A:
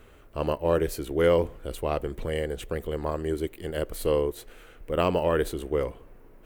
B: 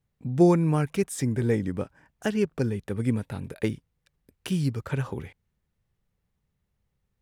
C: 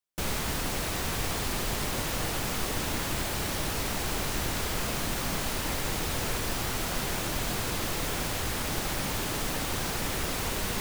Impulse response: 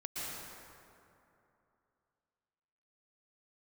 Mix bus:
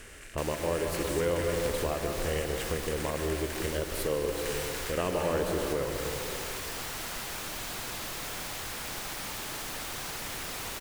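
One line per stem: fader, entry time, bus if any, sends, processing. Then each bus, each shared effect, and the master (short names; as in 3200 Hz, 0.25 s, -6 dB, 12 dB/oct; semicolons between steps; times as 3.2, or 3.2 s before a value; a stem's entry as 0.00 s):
+0.5 dB, 0.00 s, bus A, send -10.5 dB, dry
-12.0 dB, 0.00 s, no bus, no send, per-bin compression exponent 0.2; steep high-pass 1500 Hz 48 dB/oct
-6.0 dB, 0.20 s, bus A, send -8 dB, low shelf 490 Hz -9 dB
bus A: 0.0 dB, compressor, threshold -32 dBFS, peak gain reduction 15 dB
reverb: on, RT60 2.8 s, pre-delay 0.107 s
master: dry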